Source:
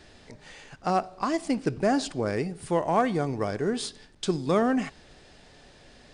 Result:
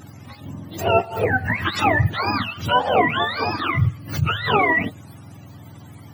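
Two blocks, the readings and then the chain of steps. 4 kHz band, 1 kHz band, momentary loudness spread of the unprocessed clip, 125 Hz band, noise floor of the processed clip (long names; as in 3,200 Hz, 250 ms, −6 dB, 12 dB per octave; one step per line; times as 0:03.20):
+11.5 dB, +8.5 dB, 11 LU, +11.5 dB, −43 dBFS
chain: frequency axis turned over on the octave scale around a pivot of 710 Hz
echo ahead of the sound 33 ms −23 dB
background raised ahead of every attack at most 120 dB per second
level +9 dB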